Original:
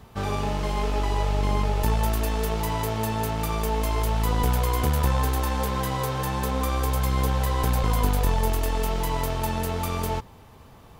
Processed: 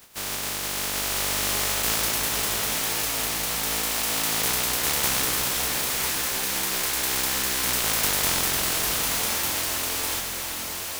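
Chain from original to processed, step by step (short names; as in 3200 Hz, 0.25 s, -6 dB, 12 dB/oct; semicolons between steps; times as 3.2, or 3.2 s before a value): spectral contrast lowered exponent 0.13; diffused feedback echo 0.977 s, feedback 44%, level -3 dB; gain -3.5 dB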